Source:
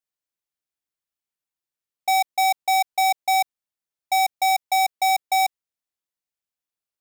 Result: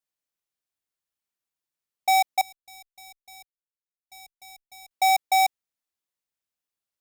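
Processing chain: 2.41–4.91 s: amplifier tone stack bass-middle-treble 10-0-1

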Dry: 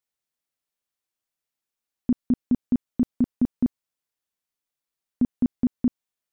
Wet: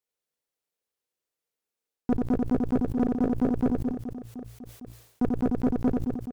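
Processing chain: peaking EQ 460 Hz +10.5 dB 0.67 oct; de-hum 57.84 Hz, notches 2; reverse; compression 6:1, threshold -26 dBFS, peak gain reduction 10 dB; reverse; waveshaping leveller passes 2; reverse bouncing-ball echo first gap 90 ms, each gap 1.5×, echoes 5; valve stage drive 19 dB, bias 0.45; decay stretcher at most 81 dB/s; trim +2 dB

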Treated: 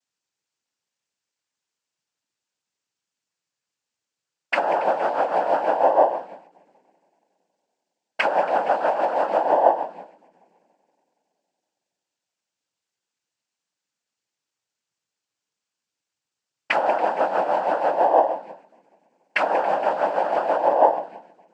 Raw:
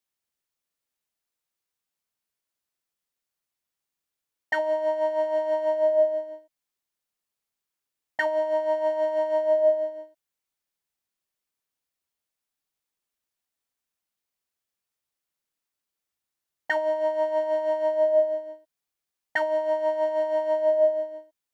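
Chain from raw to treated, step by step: multi-head delay 93 ms, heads second and third, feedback 58%, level -20 dB; noise-vocoded speech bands 8; endings held to a fixed fall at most 170 dB/s; trim +4.5 dB

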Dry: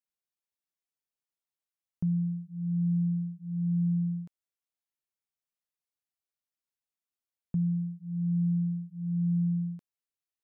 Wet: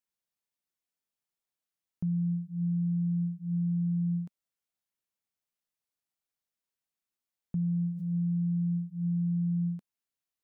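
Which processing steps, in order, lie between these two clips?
peaking EQ 200 Hz +3.5 dB 0.72 oct; peak limiter -26.5 dBFS, peak gain reduction 6 dB; 7.57–8.21 s: swell ahead of each attack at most 39 dB/s; trim +1 dB

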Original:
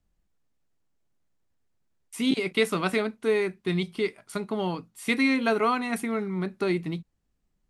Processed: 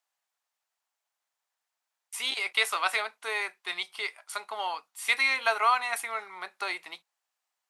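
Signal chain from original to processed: Chebyshev high-pass 790 Hz, order 3; trim +3.5 dB

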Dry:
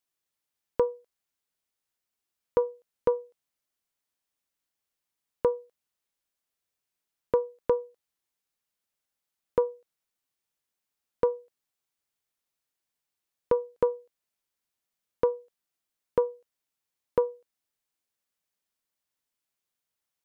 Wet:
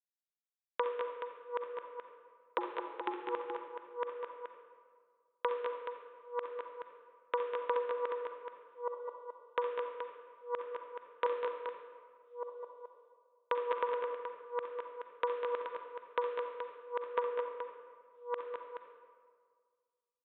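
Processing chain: chunks repeated in reverse 592 ms, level -4 dB; expander -57 dBFS; resampled via 8 kHz; 2.58–3.22 s: frequency shift -130 Hz; high-pass 1.4 kHz 12 dB/octave; multi-tap echo 64/198/214/426 ms -11/-9/-6/-8.5 dB; reverberation RT60 1.8 s, pre-delay 37 ms, DRR 5.5 dB; trim +6 dB

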